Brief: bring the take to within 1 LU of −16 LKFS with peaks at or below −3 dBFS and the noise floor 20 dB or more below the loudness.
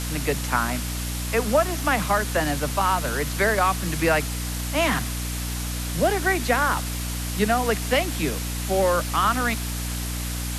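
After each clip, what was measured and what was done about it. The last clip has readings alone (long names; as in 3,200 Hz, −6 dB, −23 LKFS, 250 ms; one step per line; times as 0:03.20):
mains hum 60 Hz; hum harmonics up to 300 Hz; level of the hum −27 dBFS; background noise floor −29 dBFS; target noise floor −44 dBFS; integrated loudness −23.5 LKFS; sample peak −7.0 dBFS; target loudness −16.0 LKFS
→ mains-hum notches 60/120/180/240/300 Hz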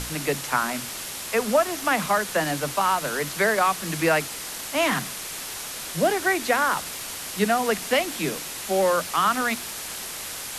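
mains hum none found; background noise floor −35 dBFS; target noise floor −45 dBFS
→ broadband denoise 10 dB, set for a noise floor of −35 dBFS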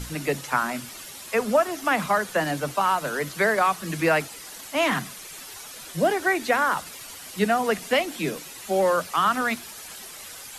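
background noise floor −41 dBFS; target noise floor −44 dBFS
→ broadband denoise 6 dB, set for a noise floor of −41 dBFS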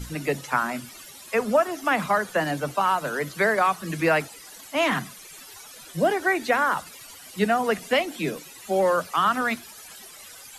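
background noise floor −45 dBFS; integrated loudness −24.5 LKFS; sample peak −8.5 dBFS; target loudness −16.0 LKFS
→ level +8.5 dB
brickwall limiter −3 dBFS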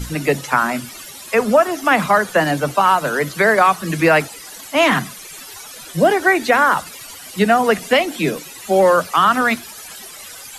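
integrated loudness −16.0 LKFS; sample peak −3.0 dBFS; background noise floor −36 dBFS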